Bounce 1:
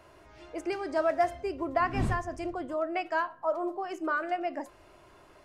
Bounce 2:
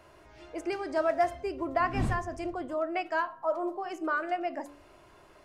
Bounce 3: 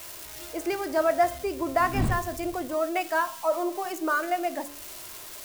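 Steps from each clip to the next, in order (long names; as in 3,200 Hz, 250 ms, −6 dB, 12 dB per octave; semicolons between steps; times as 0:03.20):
hum removal 95.82 Hz, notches 14
spike at every zero crossing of −33.5 dBFS; level +4 dB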